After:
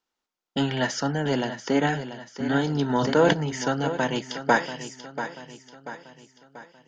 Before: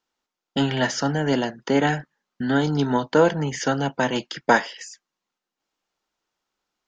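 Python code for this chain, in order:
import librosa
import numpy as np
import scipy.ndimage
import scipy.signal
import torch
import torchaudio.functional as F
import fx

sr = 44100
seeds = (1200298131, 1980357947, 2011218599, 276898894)

y = fx.echo_feedback(x, sr, ms=687, feedback_pct=47, wet_db=-11)
y = fx.sustainer(y, sr, db_per_s=26.0, at=(2.89, 3.32), fade=0.02)
y = y * librosa.db_to_amplitude(-3.0)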